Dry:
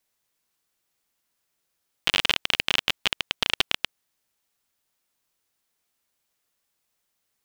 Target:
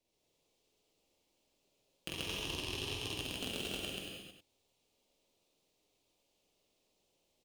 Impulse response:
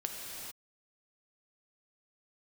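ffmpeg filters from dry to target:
-filter_complex "[0:a]firequalizer=gain_entry='entry(490,0);entry(1500,-24);entry(2600,-8);entry(12000,-21)':delay=0.05:min_phase=1,acrossover=split=220[s0][s1];[s0]aeval=exprs='abs(val(0))':c=same[s2];[s2][s1]amix=inputs=2:normalize=0,asettb=1/sr,asplit=3[s3][s4][s5];[s3]atrim=end=2.094[s6];[s4]atrim=start=2.09:end=3.09,asetpts=PTS-STARTPTS,afade=t=in:d=0.004:c=qsin,afade=t=out:st=0.996:d=0.004:c=qsin,acrossover=split=200|790|2400[s7][s8][s9][s10];[s7]acompressor=threshold=0.00562:ratio=4[s11];[s8]acompressor=threshold=0.00316:ratio=4[s12];[s9]acompressor=threshold=0.00708:ratio=4[s13];[s10]acompressor=threshold=0.01:ratio=4[s14];[s11][s12][s13][s14]amix=inputs=4:normalize=0[s15];[s5]atrim=start=3.086[s16];[s6][s15]acrossfade=d=0.004:c1=hsin:c2=qsin[s17];[s17][s16]acrossfade=d=0.004:c1=qsin:c2=hsin,aeval=exprs='(tanh(44.7*val(0)+0.7)-tanh(0.7))/44.7':c=same,acompressor=threshold=0.00316:ratio=4,aecho=1:1:46.65|134.1|230.3:0.891|1|0.501[s18];[1:a]atrim=start_sample=2205,asetrate=61740,aresample=44100[s19];[s18][s19]afir=irnorm=-1:irlink=0,volume=3.98"

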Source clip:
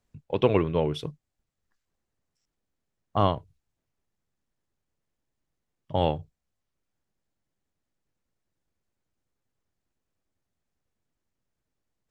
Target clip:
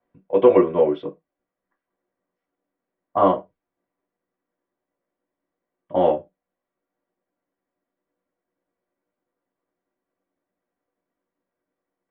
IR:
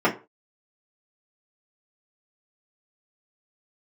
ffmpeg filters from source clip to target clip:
-filter_complex "[0:a]lowpass=2000[s0];[1:a]atrim=start_sample=2205,asetrate=70560,aresample=44100[s1];[s0][s1]afir=irnorm=-1:irlink=0,volume=0.335"

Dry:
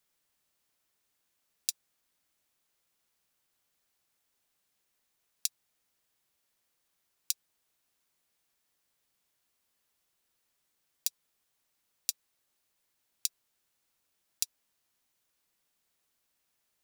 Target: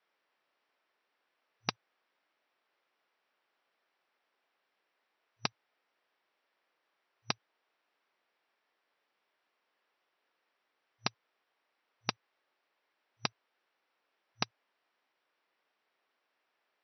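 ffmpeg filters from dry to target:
-filter_complex "[0:a]acrossover=split=310 2700:gain=0.0891 1 0.158[s0][s1][s2];[s0][s1][s2]amix=inputs=3:normalize=0,asplit=2[s3][s4];[s4]aeval=exprs='(mod(23.7*val(0)+1,2)-1)/23.7':c=same,volume=0.668[s5];[s3][s5]amix=inputs=2:normalize=0,aeval=exprs='0.106*(cos(1*acos(clip(val(0)/0.106,-1,1)))-cos(1*PI/2))+0.00133*(cos(3*acos(clip(val(0)/0.106,-1,1)))-cos(3*PI/2))+0.0473*(cos(6*acos(clip(val(0)/0.106,-1,1)))-cos(6*PI/2))+0.00596*(cos(7*acos(clip(val(0)/0.106,-1,1)))-cos(7*PI/2))':c=same,afftfilt=real='re*between(b*sr/4096,110,5900)':imag='im*between(b*sr/4096,110,5900)':win_size=4096:overlap=0.75,volume=2.51"

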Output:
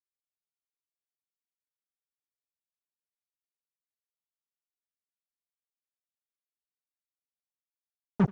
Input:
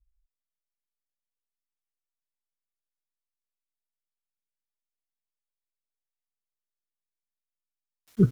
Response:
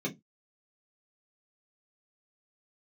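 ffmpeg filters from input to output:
-filter_complex "[0:a]acrossover=split=100|220|490[s0][s1][s2][s3];[s0]acompressor=threshold=0.00794:ratio=4[s4];[s1]acompressor=threshold=0.0631:ratio=4[s5];[s2]acompressor=threshold=0.0158:ratio=4[s6];[s3]acompressor=threshold=0.00447:ratio=4[s7];[s4][s5][s6][s7]amix=inputs=4:normalize=0,aresample=16000,acrusher=bits=3:mix=0:aa=0.5,aresample=44100,aecho=1:1:81:0.112"

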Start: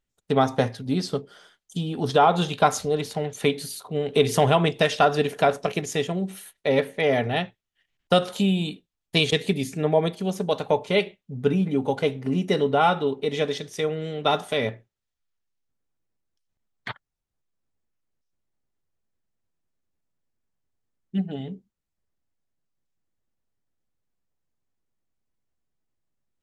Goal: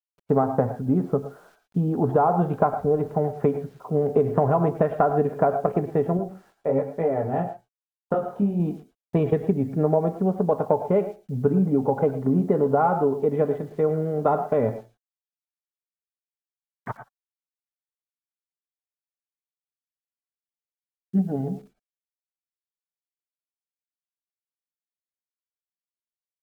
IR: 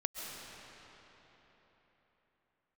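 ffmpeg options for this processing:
-filter_complex "[0:a]lowpass=f=1200:w=0.5412,lowpass=f=1200:w=1.3066,acompressor=threshold=0.0794:ratio=6,acrusher=bits=10:mix=0:aa=0.000001,asettb=1/sr,asplit=3[s0][s1][s2];[s0]atrim=end=6.174[s3];[s1]atrim=start=6.17:end=8.6,asetpts=PTS-STARTPTS,afade=t=in:d=0.004:c=qsin,afade=t=out:st=2.426:d=0.004:c=qsin,flanger=delay=17.5:depth=6.9:speed=1.1[s4];[s2]atrim=start=8.596[s5];[s3][s4]acrossfade=d=0.004:c1=hsin:c2=qsin[s6];[s6][s5]acrossfade=d=0.004:c1=qsin:c2=hsin[s7];[1:a]atrim=start_sample=2205,afade=t=out:st=0.19:d=0.01,atrim=end_sample=8820,asetrate=52920,aresample=44100[s8];[s7][s8]afir=irnorm=-1:irlink=0,volume=2.66"

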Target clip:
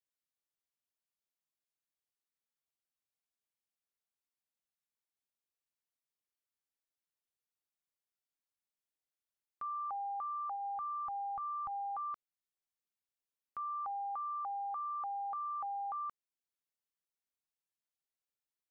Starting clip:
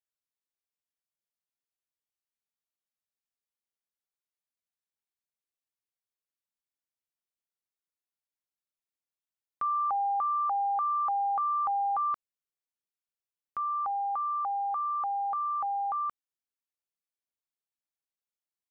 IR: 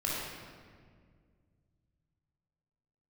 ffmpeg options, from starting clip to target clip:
-filter_complex "[0:a]asplit=3[s0][s1][s2];[s0]afade=t=out:st=10.55:d=0.02[s3];[s1]asubboost=boost=10.5:cutoff=140,afade=t=in:st=10.55:d=0.02,afade=t=out:st=11.71:d=0.02[s4];[s2]afade=t=in:st=11.71:d=0.02[s5];[s3][s4][s5]amix=inputs=3:normalize=0,alimiter=level_in=2.66:limit=0.0631:level=0:latency=1:release=382,volume=0.376,volume=0.668"

